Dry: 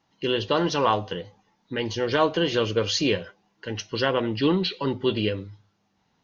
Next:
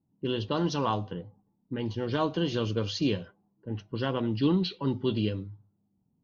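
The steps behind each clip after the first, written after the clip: ten-band EQ 125 Hz +5 dB, 250 Hz +4 dB, 500 Hz -5 dB, 2000 Hz -9 dB; low-pass opened by the level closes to 400 Hz, open at -18.5 dBFS; gain -4.5 dB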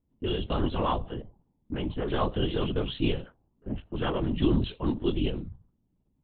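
LPC vocoder at 8 kHz whisper; gain +1 dB

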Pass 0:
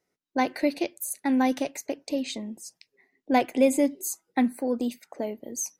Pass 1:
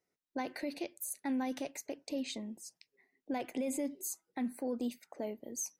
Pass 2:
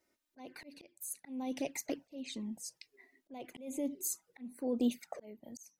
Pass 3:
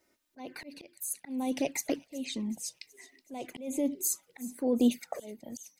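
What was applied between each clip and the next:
limiter -21 dBFS, peak gain reduction 11.5 dB; gain -7 dB
envelope flanger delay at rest 3.3 ms, full sweep at -33 dBFS; auto swell 0.799 s; gain +10.5 dB
thin delay 0.373 s, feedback 60%, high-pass 2900 Hz, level -18 dB; gain +6.5 dB

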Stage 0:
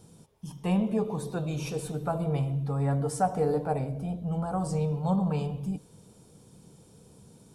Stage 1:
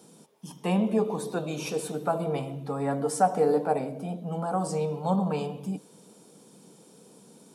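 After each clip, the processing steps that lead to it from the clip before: HPF 200 Hz 24 dB/oct; gain +4 dB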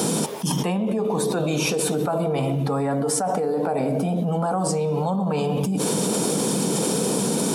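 fast leveller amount 100%; gain -6 dB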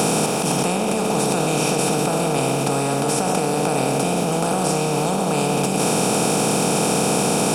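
per-bin compression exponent 0.2; gain -5 dB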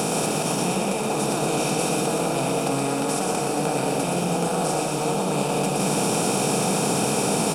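bouncing-ball echo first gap 0.12 s, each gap 0.9×, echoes 5; gain -5.5 dB

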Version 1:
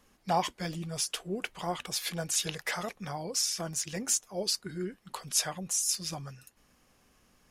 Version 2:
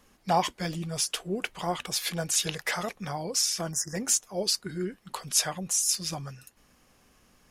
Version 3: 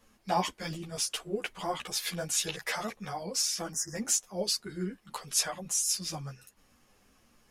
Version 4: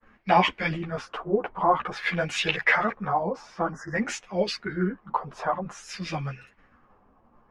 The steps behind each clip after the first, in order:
spectral delete 3.72–3.95, 2000–4900 Hz; gain +3.5 dB
ensemble effect
LFO low-pass sine 0.52 Hz 930–2500 Hz; expander -59 dBFS; gain +8 dB

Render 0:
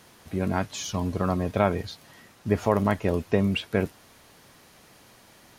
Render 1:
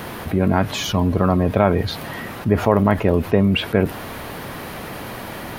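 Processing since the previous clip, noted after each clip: bell 6600 Hz -14.5 dB 1.6 oct; fast leveller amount 50%; gain +5.5 dB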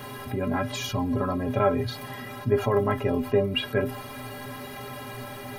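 metallic resonator 120 Hz, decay 0.25 s, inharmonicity 0.03; gain +3 dB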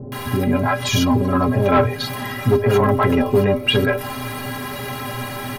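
bands offset in time lows, highs 0.12 s, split 500 Hz; sine folder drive 4 dB, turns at -11 dBFS; gain +3 dB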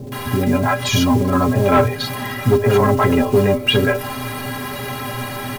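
block floating point 5-bit; gain +1.5 dB

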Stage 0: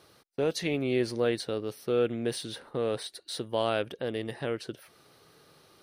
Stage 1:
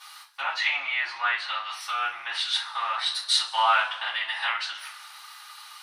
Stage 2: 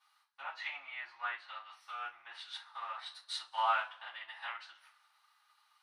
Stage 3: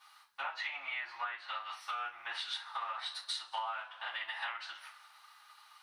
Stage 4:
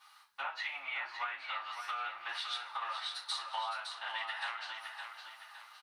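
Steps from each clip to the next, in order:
treble ducked by the level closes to 1900 Hz, closed at -26 dBFS; elliptic high-pass 900 Hz, stop band 50 dB; two-slope reverb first 0.27 s, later 2 s, from -22 dB, DRR -8.5 dB; gain +8 dB
high shelf 2200 Hz -9.5 dB; upward expander 1.5:1, over -50 dBFS; gain -6.5 dB
compressor 16:1, threshold -47 dBFS, peak gain reduction 22 dB; gain +11.5 dB
feedback echo 0.562 s, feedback 40%, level -7 dB

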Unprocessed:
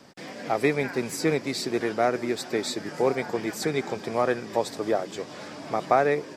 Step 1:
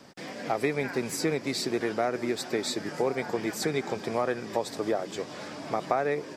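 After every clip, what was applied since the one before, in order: compressor 3:1, threshold -24 dBFS, peak gain reduction 7.5 dB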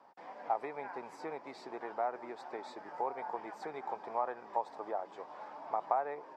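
band-pass 890 Hz, Q 4.2; gain +2 dB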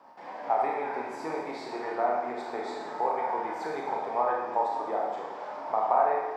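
Schroeder reverb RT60 1.2 s, combs from 25 ms, DRR -2.5 dB; gain +5 dB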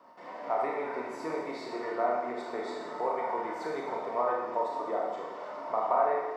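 notch comb 820 Hz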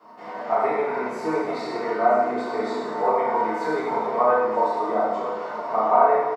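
echo 0.969 s -14.5 dB; shoebox room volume 150 m³, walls furnished, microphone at 3.8 m

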